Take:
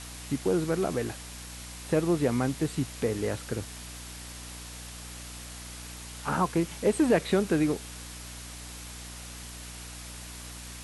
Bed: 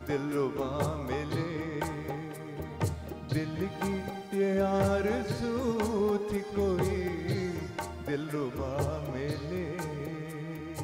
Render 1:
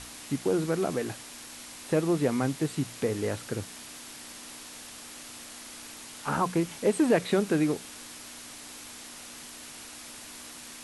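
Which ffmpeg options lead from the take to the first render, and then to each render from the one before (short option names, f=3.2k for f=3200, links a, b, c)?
-af "bandreject=f=60:t=h:w=6,bandreject=f=120:t=h:w=6,bandreject=f=180:t=h:w=6"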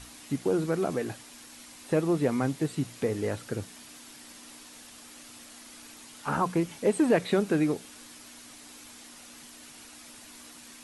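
-af "afftdn=nr=6:nf=-45"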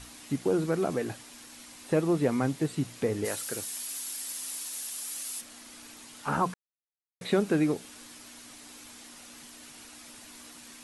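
-filter_complex "[0:a]asplit=3[a][b][c];[a]afade=t=out:st=3.24:d=0.02[d];[b]aemphasis=mode=production:type=riaa,afade=t=in:st=3.24:d=0.02,afade=t=out:st=5.4:d=0.02[e];[c]afade=t=in:st=5.4:d=0.02[f];[d][e][f]amix=inputs=3:normalize=0,asplit=3[g][h][i];[g]atrim=end=6.54,asetpts=PTS-STARTPTS,afade=t=out:st=6.536:d=0.004:c=hsin[j];[h]atrim=start=6.54:end=7.21,asetpts=PTS-STARTPTS,volume=0[k];[i]atrim=start=7.21,asetpts=PTS-STARTPTS,afade=t=in:d=0.004:c=hsin[l];[j][k][l]concat=n=3:v=0:a=1"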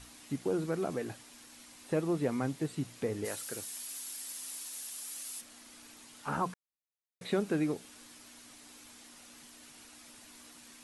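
-af "volume=-5.5dB"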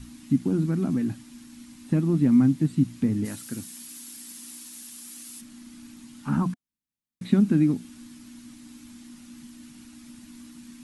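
-af "lowshelf=f=340:t=q:w=3:g=11,bandreject=f=710:w=18"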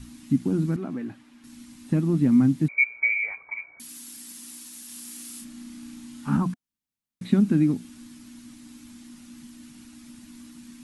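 -filter_complex "[0:a]asettb=1/sr,asplit=3[a][b][c];[a]atrim=end=0.764[d];[b]atrim=start=0.76:end=1.44,asetpts=PTS-STARTPTS,afade=t=in:d=0.004:c=qsin,afade=t=out:st=0.676:d=0.004:c=qsin,bass=f=250:g=-13,treble=f=4k:g=-15[e];[c]atrim=start=1.436[f];[d][e]acrossfade=d=0.004:c1=hsin:c2=qsin[g];[g][f]acrossfade=d=0.004:c1=qsin:c2=hsin,asettb=1/sr,asplit=3[h][i][j];[h]atrim=end=2.684[k];[i]atrim=start=2.68:end=3.8,asetpts=PTS-STARTPTS,afade=t=in:d=0.004:c=qsin,afade=t=out:st=1.116:d=0.004:c=qsin,lowpass=f=2.1k:t=q:w=0.5098,lowpass=f=2.1k:t=q:w=0.6013,lowpass=f=2.1k:t=q:w=0.9,lowpass=f=2.1k:t=q:w=2.563,afreqshift=-2500[l];[j]atrim=start=3.796[m];[k][l]acrossfade=d=0.004:c1=hsin:c2=qsin[n];[n][m]acrossfade=d=0.004:c1=qsin:c2=hsin,asettb=1/sr,asplit=3[o][p][q];[o]atrim=end=4.864[r];[p]atrim=start=4.86:end=6.37,asetpts=PTS-STARTPTS,afade=t=in:d=0.004:c=qsin,afade=t=out:st=1.506:d=0.004:c=qsin,asplit=2[s][t];[t]adelay=33,volume=-2.5dB[u];[s][u]amix=inputs=2:normalize=0,atrim=end_sample=66591[v];[q]atrim=start=6.366[w];[r][v]acrossfade=d=0.004:c1=hsin:c2=qsin[x];[x][w]acrossfade=d=0.004:c1=qsin:c2=hsin"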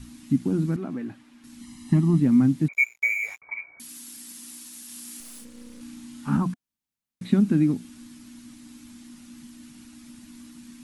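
-filter_complex "[0:a]asettb=1/sr,asplit=3[a][b][c];[a]atrim=end=1.614[d];[b]atrim=start=1.61:end=2.2,asetpts=PTS-STARTPTS,afade=t=in:d=0.004:c=qsin,afade=t=out:st=0.586:d=0.004:c=qsin,aecho=1:1:1:0.87,atrim=end_sample=26019[e];[c]atrim=start=2.196[f];[d][e]acrossfade=d=0.004:c1=hsin:c2=qsin[g];[g][f]acrossfade=d=0.004:c1=qsin:c2=hsin,asettb=1/sr,asplit=3[h][i][j];[h]atrim=end=2.734[k];[i]atrim=start=2.73:end=3.42,asetpts=PTS-STARTPTS,afade=t=in:d=0.004:c=qsin,afade=t=out:st=0.686:d=0.004:c=qsin,aeval=exprs='sgn(val(0))*max(abs(val(0))-0.00944,0)':c=same[l];[j]atrim=start=3.416[m];[k][l]acrossfade=d=0.004:c1=hsin:c2=qsin[n];[n][m]acrossfade=d=0.004:c1=qsin:c2=hsin,asettb=1/sr,asplit=3[o][p][q];[o]atrim=end=5.204[r];[p]atrim=start=5.2:end=5.81,asetpts=PTS-STARTPTS,afade=t=in:d=0.004:c=qsin,afade=t=out:st=0.606:d=0.004:c=qsin,aeval=exprs='if(lt(val(0),0),0.251*val(0),val(0))':c=same[s];[q]atrim=start=5.806[t];[r][s]acrossfade=d=0.004:c1=hsin:c2=qsin[u];[u][t]acrossfade=d=0.004:c1=qsin:c2=hsin"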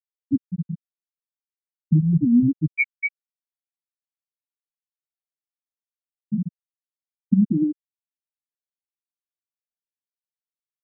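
-af "afftfilt=real='re*gte(hypot(re,im),0.794)':imag='im*gte(hypot(re,im),0.794)':win_size=1024:overlap=0.75,bass=f=250:g=4,treble=f=4k:g=8"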